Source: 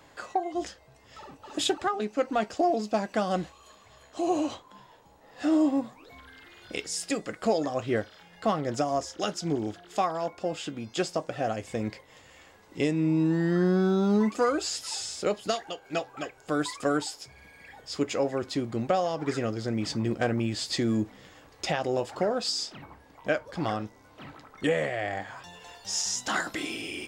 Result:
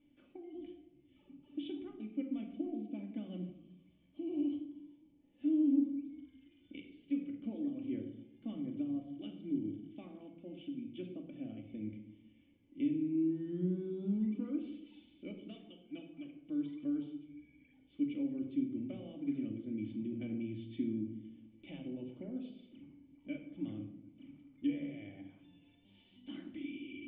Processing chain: wow and flutter 22 cents; cascade formant filter i; simulated room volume 2600 m³, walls furnished, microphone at 2.5 m; trim -6.5 dB

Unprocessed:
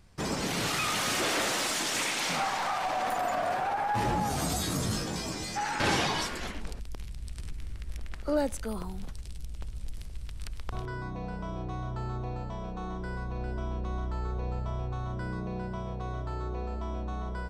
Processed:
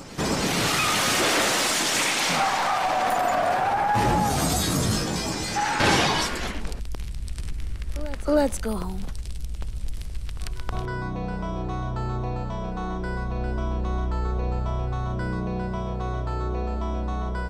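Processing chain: reverse echo 319 ms -16.5 dB; trim +7 dB

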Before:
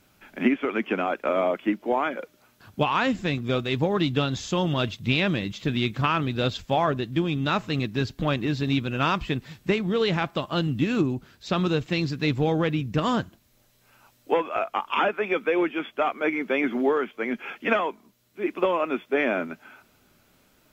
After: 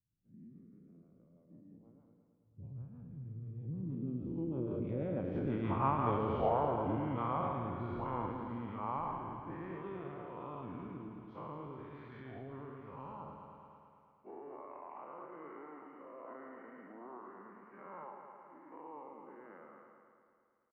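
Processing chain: every event in the spectrogram widened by 240 ms; Doppler pass-by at 6.10 s, 12 m/s, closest 1.8 m; treble shelf 6.7 kHz +8 dB; compression 5:1, threshold -32 dBFS, peak gain reduction 14 dB; low-pass sweep 140 Hz -> 1.1 kHz, 3.38–5.62 s; rotary cabinet horn 6.3 Hz, later 1.2 Hz, at 5.59 s; pitch shift -2 st; on a send: multi-head delay 109 ms, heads first and second, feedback 60%, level -10.5 dB; on the sum: tape noise reduction on one side only encoder only; trim +1.5 dB

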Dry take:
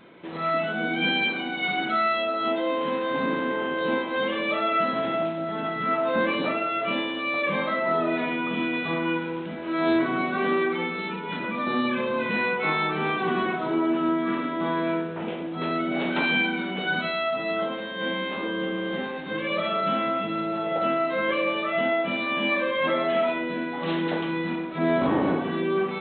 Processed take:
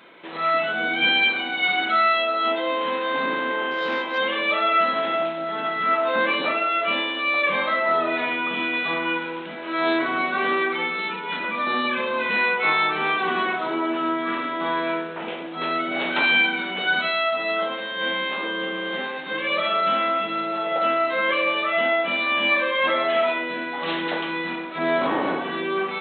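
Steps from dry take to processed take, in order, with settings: high-pass 890 Hz 6 dB/octave; 3.71–4.18 s: transformer saturation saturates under 1 kHz; trim +6.5 dB

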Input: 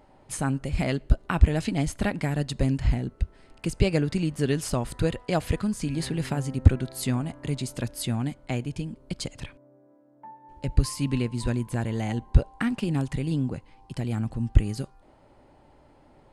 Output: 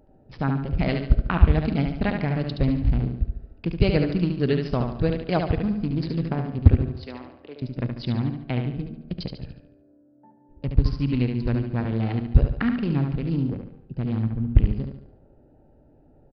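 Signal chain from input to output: local Wiener filter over 41 samples; 6.99–7.62 s: ladder high-pass 320 Hz, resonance 25%; feedback delay 72 ms, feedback 43%, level -5.5 dB; on a send at -14.5 dB: reverberation RT60 1.5 s, pre-delay 3 ms; on the sum: resampled via 11.025 kHz; trim +2 dB

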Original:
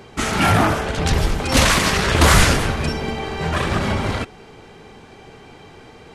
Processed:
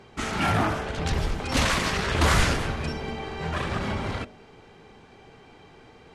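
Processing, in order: treble shelf 10 kHz -11.5 dB; de-hum 47.81 Hz, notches 14; trim -7.5 dB

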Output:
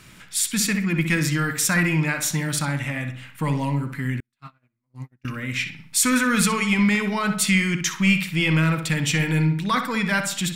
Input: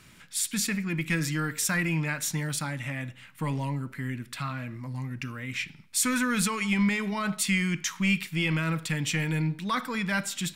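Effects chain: filtered feedback delay 63 ms, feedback 42%, low-pass 3.4 kHz, level -7.5 dB; 4.20–5.25 s: gate -28 dBFS, range -48 dB; trim +6 dB

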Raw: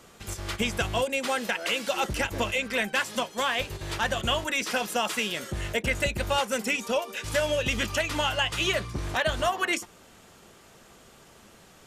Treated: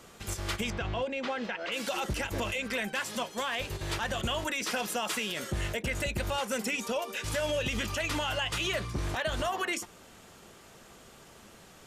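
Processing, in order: peak limiter -22.5 dBFS, peak gain reduction 8 dB; 0.70–1.72 s: distance through air 190 m

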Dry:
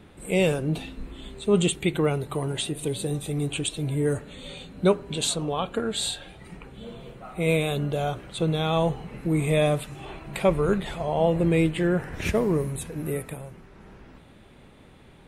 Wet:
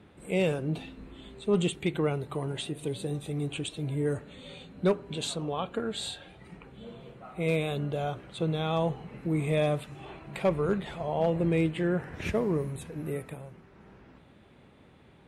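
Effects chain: high-pass 63 Hz 12 dB/octave; treble shelf 6.3 kHz -10 dB; hard clipper -12.5 dBFS, distortion -28 dB; trim -4.5 dB

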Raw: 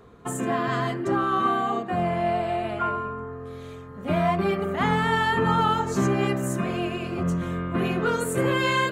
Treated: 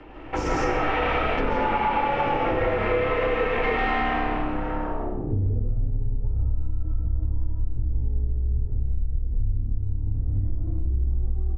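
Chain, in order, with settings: comb filter that takes the minimum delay 1.7 ms; tape speed -23%; low-pass sweep 2.6 kHz -> 100 Hz, 4.46–5.52 s; peak limiter -21 dBFS, peak gain reduction 8.5 dB; frequency shift -36 Hz; on a send: frequency-shifting echo 88 ms, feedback 44%, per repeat -39 Hz, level -10 dB; on the sum: algorithmic reverb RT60 0.67 s, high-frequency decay 0.95×, pre-delay 100 ms, DRR -4 dB; compression 5:1, threshold -27 dBFS, peak gain reduction 10.5 dB; trim +7 dB

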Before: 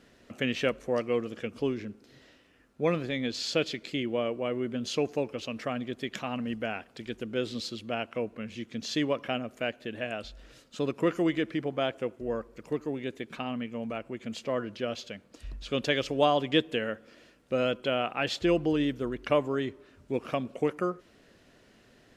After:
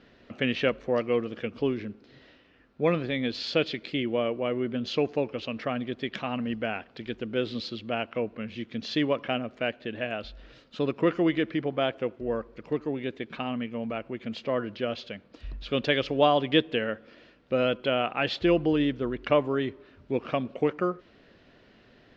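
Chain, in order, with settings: low-pass 4.5 kHz 24 dB/octave; trim +2.5 dB

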